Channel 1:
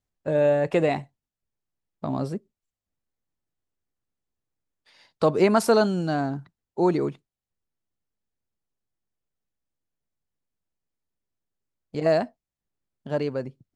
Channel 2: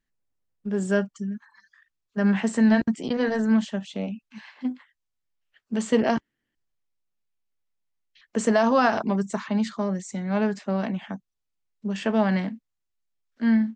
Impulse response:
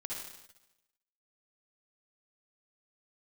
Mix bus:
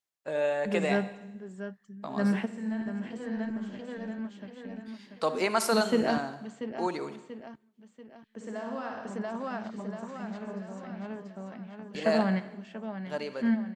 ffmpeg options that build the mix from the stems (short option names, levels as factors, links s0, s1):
-filter_complex "[0:a]highpass=f=1300:p=1,volume=0.841,asplit=3[s0][s1][s2];[s1]volume=0.355[s3];[1:a]acrusher=bits=11:mix=0:aa=0.000001,bass=f=250:g=1,treble=f=4000:g=-6,volume=0.473,asplit=3[s4][s5][s6];[s5]volume=0.224[s7];[s6]volume=0.316[s8];[s2]apad=whole_len=606530[s9];[s4][s9]sidechaingate=range=0.126:threshold=0.00224:ratio=16:detection=peak[s10];[2:a]atrim=start_sample=2205[s11];[s3][s7]amix=inputs=2:normalize=0[s12];[s12][s11]afir=irnorm=-1:irlink=0[s13];[s8]aecho=0:1:687|1374|2061|2748|3435|4122|4809:1|0.47|0.221|0.104|0.0488|0.0229|0.0108[s14];[s0][s10][s13][s14]amix=inputs=4:normalize=0"